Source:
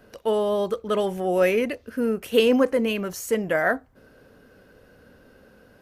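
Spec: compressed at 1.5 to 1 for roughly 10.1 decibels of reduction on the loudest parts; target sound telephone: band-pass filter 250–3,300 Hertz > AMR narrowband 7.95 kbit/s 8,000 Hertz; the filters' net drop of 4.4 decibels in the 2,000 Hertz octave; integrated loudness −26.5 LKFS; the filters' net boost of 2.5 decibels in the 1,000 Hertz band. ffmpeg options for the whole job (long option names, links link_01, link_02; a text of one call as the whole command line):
ffmpeg -i in.wav -af "equalizer=frequency=1000:width_type=o:gain=5.5,equalizer=frequency=2000:width_type=o:gain=-7.5,acompressor=threshold=-43dB:ratio=1.5,highpass=250,lowpass=3300,volume=7dB" -ar 8000 -c:a libopencore_amrnb -b:a 7950 out.amr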